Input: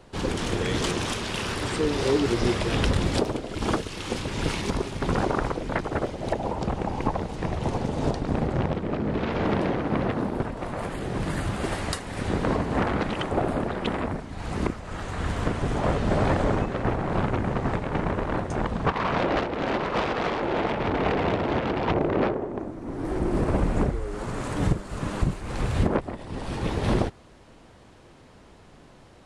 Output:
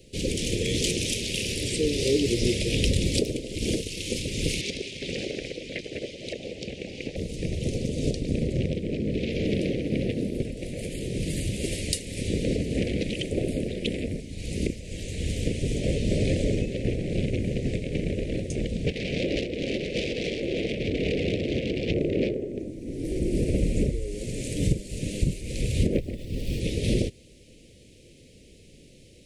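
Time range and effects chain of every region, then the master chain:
4.61–7.16 LPF 3300 Hz + tilt +3.5 dB/oct
25.93–26.6 median filter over 5 samples + low shelf 120 Hz +7 dB
whole clip: Chebyshev band-stop 520–2300 Hz, order 3; high shelf 3900 Hz +8.5 dB

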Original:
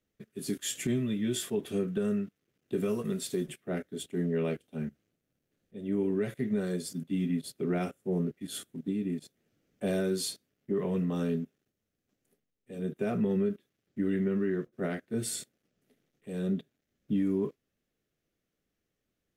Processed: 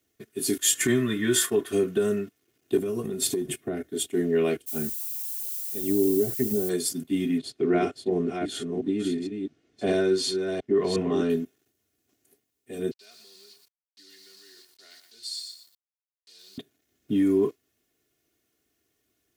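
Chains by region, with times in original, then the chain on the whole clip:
0.74–1.73 band shelf 1400 Hz +10 dB 1.1 oct + gate -40 dBFS, range -7 dB
2.77–3.9 low shelf 490 Hz +10.5 dB + compressor 12:1, threshold -31 dBFS
4.66–6.68 treble ducked by the level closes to 530 Hz, closed at -26.5 dBFS + added noise violet -48 dBFS
7.38–11.3 reverse delay 0.358 s, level -5.5 dB + air absorption 110 m
12.91–16.58 requantised 8-bit, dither none + band-pass 4400 Hz, Q 6.6 + lo-fi delay 0.119 s, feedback 35%, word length 11-bit, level -4.5 dB
whole clip: HPF 80 Hz; high shelf 4800 Hz +8.5 dB; comb 2.8 ms, depth 62%; gain +5.5 dB

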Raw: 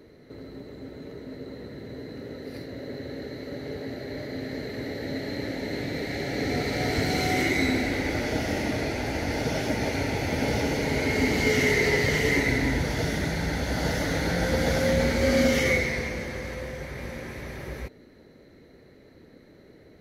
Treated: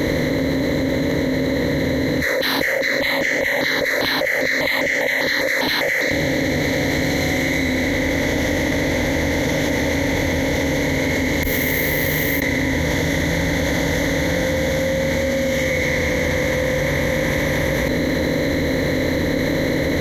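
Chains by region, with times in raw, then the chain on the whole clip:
2.21–6.11 LFO high-pass saw down 4.9 Hz 520–2600 Hz + step phaser 5 Hz 830–3900 Hz
11.43–12.42 flipped gate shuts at -21 dBFS, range -39 dB + careless resampling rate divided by 3×, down none, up zero stuff
whole clip: per-bin compression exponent 0.6; ripple EQ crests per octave 1.1, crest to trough 10 dB; fast leveller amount 100%; gain -4.5 dB

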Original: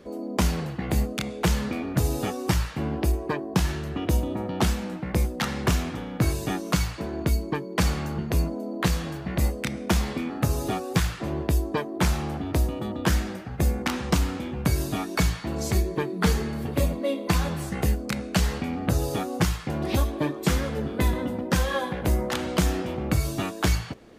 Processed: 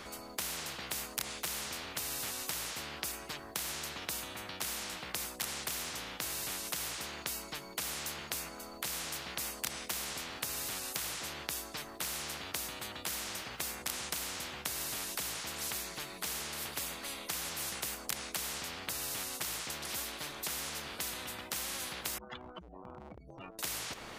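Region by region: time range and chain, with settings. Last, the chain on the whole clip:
22.18–23.59 spectral contrast raised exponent 3.5 + transient shaper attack -1 dB, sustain -7 dB
whole clip: notch 1700 Hz, Q 16; compressor 2.5:1, threshold -25 dBFS; spectral compressor 10:1

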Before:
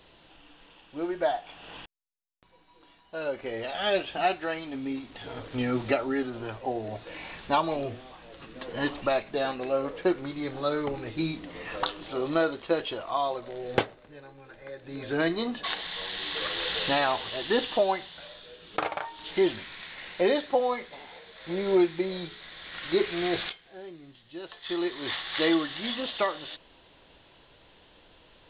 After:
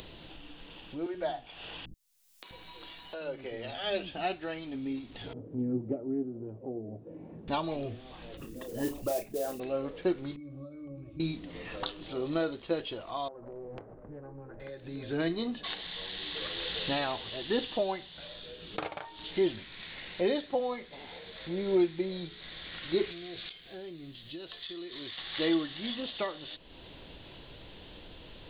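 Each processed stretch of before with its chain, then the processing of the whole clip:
1.06–4.13 bands offset in time highs, lows 80 ms, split 270 Hz + mismatched tape noise reduction encoder only
5.33–7.48 Butterworth band-pass 240 Hz, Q 0.66 + Doppler distortion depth 0.12 ms
8.37–9.6 formant sharpening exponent 2 + modulation noise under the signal 17 dB + doubler 33 ms -9 dB
10.36–11.2 notches 50/100/150/200/250 Hz + compressor 5:1, threshold -36 dBFS + octave resonator C#, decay 0.12 s
13.28–14.6 LPF 1300 Hz 24 dB/oct + compressor 4:1, threshold -39 dBFS + Doppler distortion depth 0.65 ms
23.11–25.18 high shelf 3400 Hz +10.5 dB + notch 860 Hz, Q 8.6 + compressor 10:1, threshold -36 dBFS
whole clip: bell 1200 Hz -9.5 dB 2.8 oct; upward compressor, threshold -37 dBFS

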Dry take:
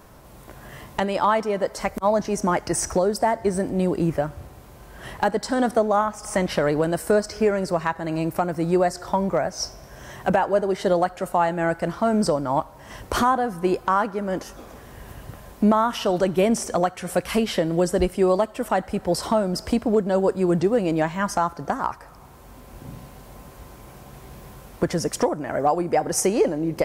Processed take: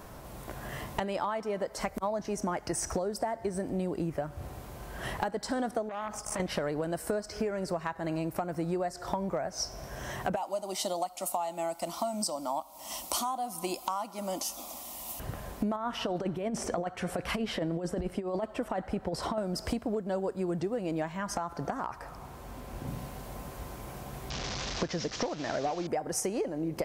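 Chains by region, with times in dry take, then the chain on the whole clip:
5.89–6.4 gate with hold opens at -25 dBFS, closes at -35 dBFS + compressor 2.5:1, threshold -29 dBFS + core saturation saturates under 1000 Hz
10.36–15.2 tilt +3.5 dB/oct + fixed phaser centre 440 Hz, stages 6
15.76–19.38 LPF 2900 Hz 6 dB/oct + negative-ratio compressor -22 dBFS, ratio -0.5
21.12–22.88 high shelf 7600 Hz -4.5 dB + compressor 2:1, threshold -27 dBFS
24.3–25.87 delta modulation 32 kbps, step -32.5 dBFS + high shelf 3700 Hz +11 dB
whole clip: bell 700 Hz +2.5 dB 0.29 oct; compressor 6:1, threshold -31 dBFS; gain +1 dB

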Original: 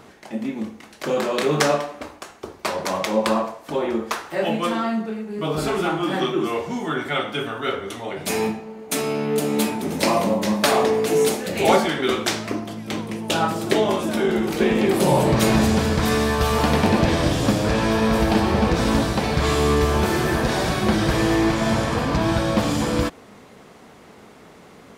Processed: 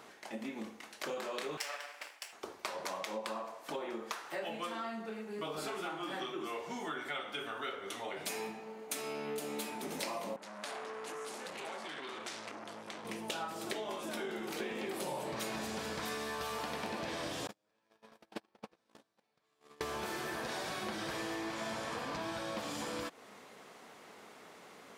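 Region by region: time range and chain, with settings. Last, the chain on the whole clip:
1.57–2.33 minimum comb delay 0.38 ms + HPF 940 Hz
10.36–13.05 LPF 11000 Hz 24 dB/oct + compressor 10:1, threshold -28 dBFS + core saturation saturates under 1800 Hz
17.47–19.81 bell 70 Hz -11.5 dB 0.7 oct + gate -15 dBFS, range -50 dB
whole clip: HPF 610 Hz 6 dB/oct; compressor, threshold -32 dBFS; gain -5 dB

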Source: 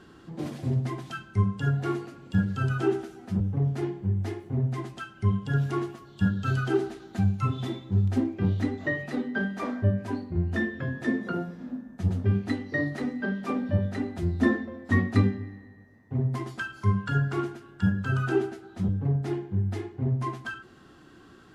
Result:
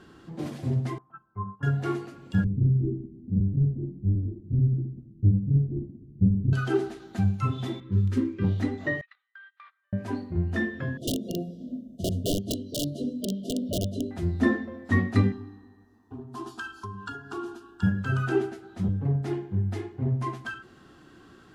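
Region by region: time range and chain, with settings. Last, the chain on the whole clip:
0.98–1.63 gate -36 dBFS, range -11 dB + ladder low-pass 1200 Hz, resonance 75%
2.44–6.53 half-waves squared off + inverse Chebyshev low-pass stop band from 1600 Hz, stop band 80 dB + echo 76 ms -12 dB
7.8–8.44 low-pass opened by the level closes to 2100 Hz, open at -21.5 dBFS + Butterworth band-stop 710 Hz, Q 1.5
9.01–9.93 elliptic band-pass 1200–3900 Hz, stop band 70 dB + gate -42 dBFS, range -28 dB + compressor, threshold -47 dBFS
10.97–14.11 wrapped overs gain 20 dB + brick-wall FIR band-stop 710–2800 Hz
15.32–17.83 compressor, threshold -29 dBFS + bell 2300 Hz +6 dB 2.1 oct + fixed phaser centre 560 Hz, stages 6
whole clip: dry

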